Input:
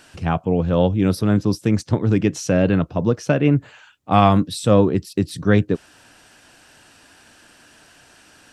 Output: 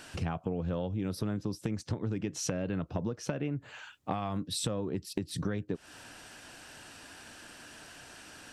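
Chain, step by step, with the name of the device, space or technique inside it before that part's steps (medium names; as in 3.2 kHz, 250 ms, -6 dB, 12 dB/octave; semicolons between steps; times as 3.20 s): serial compression, peaks first (compression 10:1, threshold -24 dBFS, peak gain reduction 16 dB; compression 3:1, threshold -31 dBFS, peak gain reduction 8 dB)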